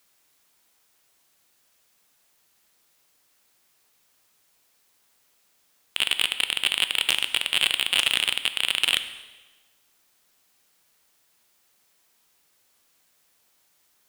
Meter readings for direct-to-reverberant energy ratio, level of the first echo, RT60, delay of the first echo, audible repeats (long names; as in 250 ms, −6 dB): 10.0 dB, no echo audible, 1.2 s, no echo audible, no echo audible